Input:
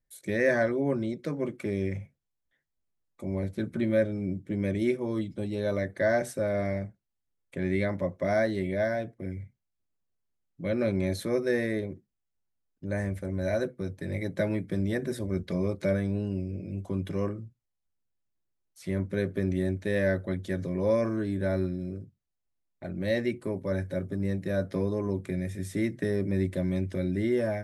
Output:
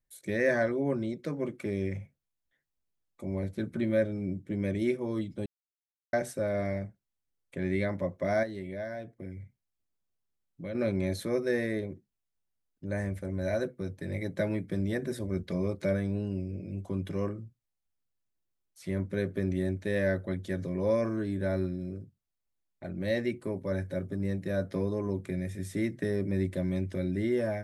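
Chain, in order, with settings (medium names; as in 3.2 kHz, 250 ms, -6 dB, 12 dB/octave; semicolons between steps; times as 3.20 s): 5.46–6.13 s: mute; 8.43–10.75 s: compression 2:1, threshold -38 dBFS, peak gain reduction 8.5 dB; trim -2 dB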